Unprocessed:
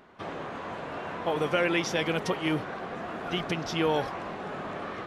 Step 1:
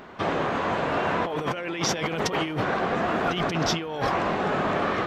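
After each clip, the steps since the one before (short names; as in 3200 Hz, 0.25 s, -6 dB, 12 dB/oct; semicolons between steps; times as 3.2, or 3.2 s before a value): bell 10000 Hz -12.5 dB 0.23 oct; negative-ratio compressor -34 dBFS, ratio -1; gain +8 dB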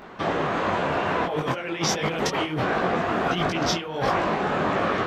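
detuned doubles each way 50 cents; gain +5 dB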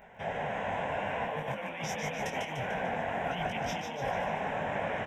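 fixed phaser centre 1200 Hz, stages 6; frequency-shifting echo 0.148 s, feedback 54%, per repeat +53 Hz, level -5 dB; gain -7.5 dB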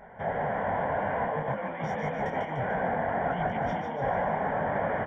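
soft clip -21 dBFS, distortion -27 dB; polynomial smoothing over 41 samples; gain +5.5 dB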